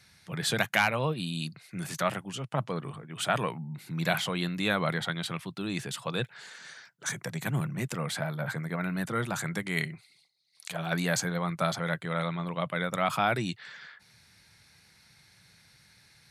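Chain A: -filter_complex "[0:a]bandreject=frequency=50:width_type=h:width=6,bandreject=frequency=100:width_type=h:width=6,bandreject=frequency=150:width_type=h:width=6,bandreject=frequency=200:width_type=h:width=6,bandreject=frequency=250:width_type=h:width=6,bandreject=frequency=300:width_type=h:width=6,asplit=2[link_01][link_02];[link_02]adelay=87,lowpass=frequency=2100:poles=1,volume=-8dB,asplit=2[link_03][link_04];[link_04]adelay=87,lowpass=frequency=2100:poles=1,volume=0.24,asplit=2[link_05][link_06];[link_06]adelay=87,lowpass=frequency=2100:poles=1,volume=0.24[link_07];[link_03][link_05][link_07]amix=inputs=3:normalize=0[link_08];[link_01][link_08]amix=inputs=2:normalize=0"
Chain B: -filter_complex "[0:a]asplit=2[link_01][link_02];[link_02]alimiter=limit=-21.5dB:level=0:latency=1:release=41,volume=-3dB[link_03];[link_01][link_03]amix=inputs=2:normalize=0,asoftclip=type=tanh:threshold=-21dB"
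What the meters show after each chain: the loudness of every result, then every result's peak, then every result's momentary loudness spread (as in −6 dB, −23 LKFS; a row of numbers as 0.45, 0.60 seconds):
−31.0, −30.0 LKFS; −9.5, −21.0 dBFS; 12, 9 LU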